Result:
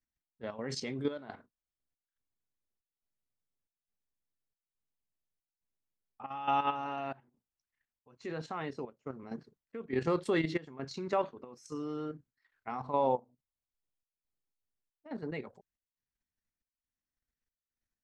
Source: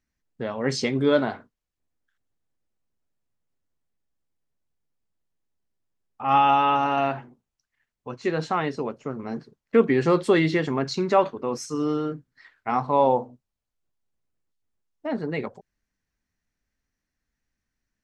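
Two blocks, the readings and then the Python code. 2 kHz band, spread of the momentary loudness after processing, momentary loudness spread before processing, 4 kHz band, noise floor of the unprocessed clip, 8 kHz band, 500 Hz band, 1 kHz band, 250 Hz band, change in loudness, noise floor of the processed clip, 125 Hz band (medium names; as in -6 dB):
-12.5 dB, 17 LU, 16 LU, -12.0 dB, -84 dBFS, -12.0 dB, -12.5 dB, -12.5 dB, -12.5 dB, -12.5 dB, under -85 dBFS, -12.0 dB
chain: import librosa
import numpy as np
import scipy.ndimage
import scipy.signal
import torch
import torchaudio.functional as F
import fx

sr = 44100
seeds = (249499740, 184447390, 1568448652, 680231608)

y = fx.level_steps(x, sr, step_db=10)
y = fx.step_gate(y, sr, bpm=139, pattern='xx..xxxx', floor_db=-12.0, edge_ms=4.5)
y = y * librosa.db_to_amplitude(-7.5)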